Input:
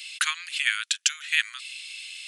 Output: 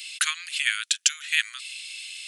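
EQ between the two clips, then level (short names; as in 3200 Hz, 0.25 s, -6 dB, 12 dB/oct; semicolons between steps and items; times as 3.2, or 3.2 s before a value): high shelf 4700 Hz +6 dB; dynamic EQ 810 Hz, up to -5 dB, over -44 dBFS, Q 1.8; -1.0 dB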